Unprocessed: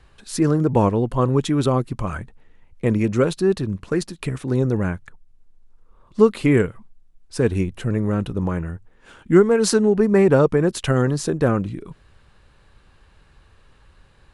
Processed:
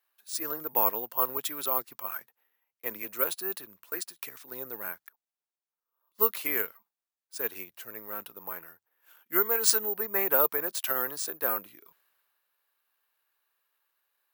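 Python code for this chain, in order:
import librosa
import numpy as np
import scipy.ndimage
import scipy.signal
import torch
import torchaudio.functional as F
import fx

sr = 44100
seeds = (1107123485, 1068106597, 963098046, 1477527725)

y = scipy.signal.sosfilt(scipy.signal.butter(2, 820.0, 'highpass', fs=sr, output='sos'), x)
y = (np.kron(y[::3], np.eye(3)[0]) * 3)[:len(y)]
y = fx.band_widen(y, sr, depth_pct=40)
y = y * 10.0 ** (-6.5 / 20.0)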